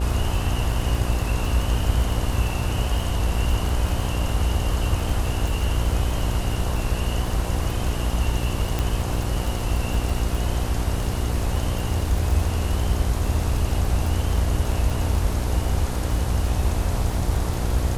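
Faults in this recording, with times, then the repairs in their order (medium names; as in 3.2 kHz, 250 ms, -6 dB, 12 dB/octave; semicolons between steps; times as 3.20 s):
buzz 60 Hz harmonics 15 -27 dBFS
crackle 26 per s -25 dBFS
8.79 s: pop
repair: de-click; de-hum 60 Hz, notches 15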